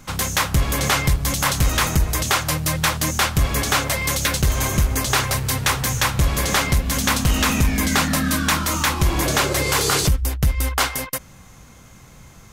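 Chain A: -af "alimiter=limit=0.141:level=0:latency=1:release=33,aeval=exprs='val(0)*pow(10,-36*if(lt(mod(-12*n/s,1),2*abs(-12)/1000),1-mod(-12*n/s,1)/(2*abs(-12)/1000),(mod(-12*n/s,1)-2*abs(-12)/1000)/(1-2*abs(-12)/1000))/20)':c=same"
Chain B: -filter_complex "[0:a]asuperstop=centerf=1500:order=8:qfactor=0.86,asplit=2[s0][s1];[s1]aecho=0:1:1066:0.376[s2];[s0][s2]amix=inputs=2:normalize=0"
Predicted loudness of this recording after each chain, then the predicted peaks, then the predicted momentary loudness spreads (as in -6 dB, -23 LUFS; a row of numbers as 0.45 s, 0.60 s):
-34.0 LUFS, -20.5 LUFS; -17.0 dBFS, -5.5 dBFS; 3 LU, 5 LU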